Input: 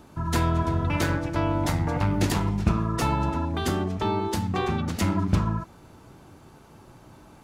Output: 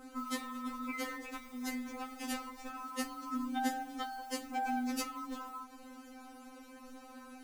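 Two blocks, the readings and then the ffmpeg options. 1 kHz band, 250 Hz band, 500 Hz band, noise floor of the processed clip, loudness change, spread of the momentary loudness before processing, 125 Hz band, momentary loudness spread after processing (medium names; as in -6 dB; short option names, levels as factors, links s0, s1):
-9.5 dB, -12.0 dB, -18.0 dB, -54 dBFS, -13.5 dB, 3 LU, under -40 dB, 17 LU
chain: -af "adynamicequalizer=threshold=0.00224:dfrequency=3800:dqfactor=2.3:tfrequency=3800:tqfactor=2.3:attack=5:release=100:ratio=0.375:range=2.5:mode=cutabove:tftype=bell,alimiter=limit=0.168:level=0:latency=1:release=141,acompressor=threshold=0.0355:ratio=10,acrusher=bits=7:mode=log:mix=0:aa=0.000001,afftfilt=real='re*3.46*eq(mod(b,12),0)':imag='im*3.46*eq(mod(b,12),0)':win_size=2048:overlap=0.75,volume=1.26"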